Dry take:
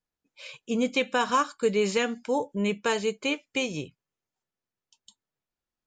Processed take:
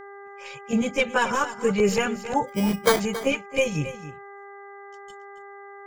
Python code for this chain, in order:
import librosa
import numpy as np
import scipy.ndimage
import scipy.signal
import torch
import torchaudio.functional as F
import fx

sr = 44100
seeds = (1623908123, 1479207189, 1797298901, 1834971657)

p1 = fx.tracing_dist(x, sr, depth_ms=0.022)
p2 = fx.peak_eq(p1, sr, hz=3900.0, db=-7.5, octaves=0.46)
p3 = fx.level_steps(p2, sr, step_db=18)
p4 = p2 + (p3 * 10.0 ** (-2.0 / 20.0))
p5 = fx.filter_lfo_notch(p4, sr, shape='square', hz=5.6, low_hz=360.0, high_hz=4000.0, q=1.3)
p6 = fx.chorus_voices(p5, sr, voices=6, hz=0.72, base_ms=14, depth_ms=1.2, mix_pct=70)
p7 = fx.sample_hold(p6, sr, seeds[0], rate_hz=2700.0, jitter_pct=0, at=(2.47, 2.99), fade=0.02)
p8 = fx.dmg_buzz(p7, sr, base_hz=400.0, harmonics=5, level_db=-47.0, tilt_db=-4, odd_only=False)
p9 = p8 + 10.0 ** (-13.5 / 20.0) * np.pad(p8, (int(274 * sr / 1000.0), 0))[:len(p8)]
y = p9 * 10.0 ** (4.5 / 20.0)